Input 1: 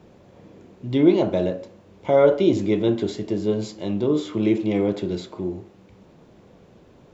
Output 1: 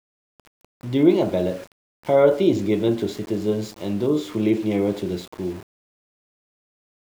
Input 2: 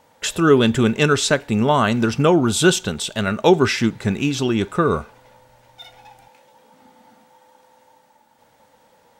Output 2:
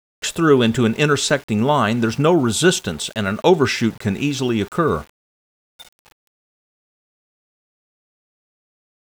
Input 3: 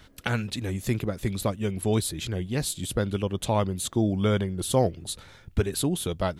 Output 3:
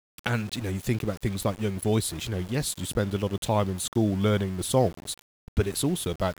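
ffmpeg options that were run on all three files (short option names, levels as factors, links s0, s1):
-af "aeval=exprs='val(0)*gte(abs(val(0)),0.0133)':c=same"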